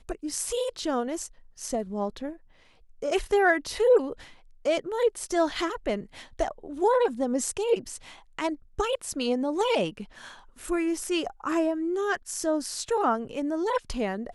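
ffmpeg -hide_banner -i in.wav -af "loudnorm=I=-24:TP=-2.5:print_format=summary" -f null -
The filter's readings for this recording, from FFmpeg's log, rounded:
Input Integrated:    -27.8 LUFS
Input True Peak:     -11.1 dBTP
Input LRA:             2.8 LU
Input Threshold:     -38.3 LUFS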